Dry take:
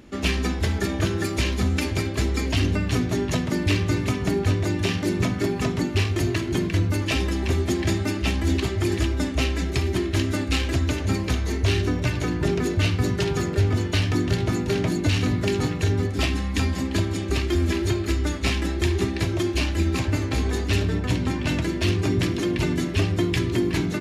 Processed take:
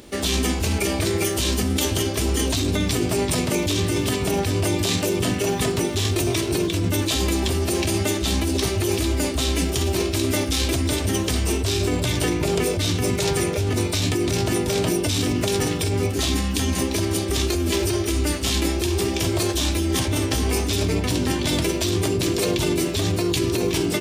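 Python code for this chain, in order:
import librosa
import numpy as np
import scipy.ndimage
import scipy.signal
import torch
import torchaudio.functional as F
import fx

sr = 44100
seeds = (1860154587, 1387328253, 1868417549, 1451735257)

p1 = fx.high_shelf(x, sr, hz=3200.0, db=10.5)
p2 = fx.over_compress(p1, sr, threshold_db=-23.0, ratio=-0.5)
p3 = p1 + F.gain(torch.from_numpy(p2), 3.0).numpy()
p4 = fx.formant_shift(p3, sr, semitones=5)
y = F.gain(torch.from_numpy(p4), -6.0).numpy()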